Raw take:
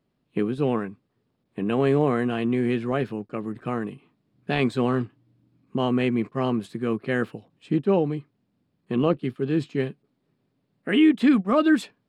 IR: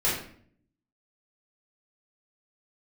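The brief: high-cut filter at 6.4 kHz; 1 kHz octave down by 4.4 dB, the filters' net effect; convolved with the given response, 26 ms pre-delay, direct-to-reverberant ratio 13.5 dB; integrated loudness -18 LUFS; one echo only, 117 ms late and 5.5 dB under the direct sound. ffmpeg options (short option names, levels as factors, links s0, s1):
-filter_complex "[0:a]lowpass=6400,equalizer=f=1000:t=o:g=-6,aecho=1:1:117:0.531,asplit=2[s0][s1];[1:a]atrim=start_sample=2205,adelay=26[s2];[s1][s2]afir=irnorm=-1:irlink=0,volume=0.0531[s3];[s0][s3]amix=inputs=2:normalize=0,volume=2"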